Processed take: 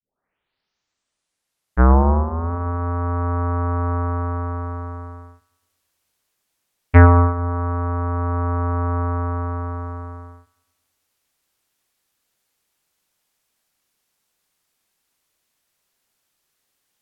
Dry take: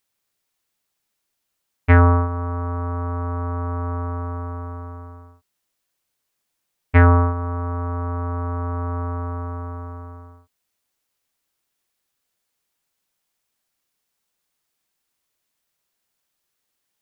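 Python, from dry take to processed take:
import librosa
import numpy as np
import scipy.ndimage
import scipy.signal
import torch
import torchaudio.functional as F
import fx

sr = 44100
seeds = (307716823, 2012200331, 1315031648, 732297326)

p1 = fx.tape_start_head(x, sr, length_s=2.52)
p2 = fx.env_lowpass_down(p1, sr, base_hz=1700.0, full_db=-19.5)
p3 = fx.rider(p2, sr, range_db=4, speed_s=2.0)
p4 = p3 + fx.echo_filtered(p3, sr, ms=109, feedback_pct=60, hz=2000.0, wet_db=-15.0, dry=0)
y = F.gain(torch.from_numpy(p4), 1.0).numpy()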